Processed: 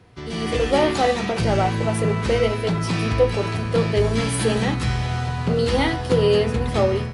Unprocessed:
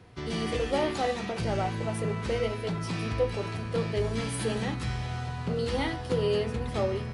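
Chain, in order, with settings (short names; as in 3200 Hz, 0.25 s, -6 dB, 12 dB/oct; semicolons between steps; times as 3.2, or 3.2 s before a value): AGC gain up to 8 dB; gain +1.5 dB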